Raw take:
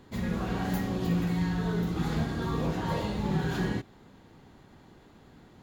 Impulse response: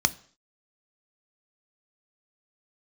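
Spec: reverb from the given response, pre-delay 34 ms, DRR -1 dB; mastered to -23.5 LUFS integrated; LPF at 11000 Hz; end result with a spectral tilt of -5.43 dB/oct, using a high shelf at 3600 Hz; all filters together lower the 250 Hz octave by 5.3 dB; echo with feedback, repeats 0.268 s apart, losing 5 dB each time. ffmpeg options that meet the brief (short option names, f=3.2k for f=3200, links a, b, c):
-filter_complex "[0:a]lowpass=11k,equalizer=f=250:t=o:g=-9,highshelf=f=3.6k:g=6.5,aecho=1:1:268|536|804|1072|1340|1608|1876:0.562|0.315|0.176|0.0988|0.0553|0.031|0.0173,asplit=2[a][b];[1:a]atrim=start_sample=2205,adelay=34[c];[b][c]afir=irnorm=-1:irlink=0,volume=-10dB[d];[a][d]amix=inputs=2:normalize=0,volume=4dB"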